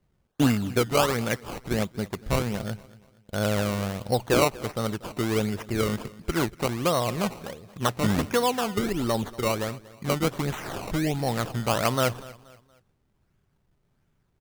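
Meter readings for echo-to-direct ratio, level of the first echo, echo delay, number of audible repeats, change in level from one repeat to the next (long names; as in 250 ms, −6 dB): −19.5 dB, −20.0 dB, 237 ms, 2, −8.5 dB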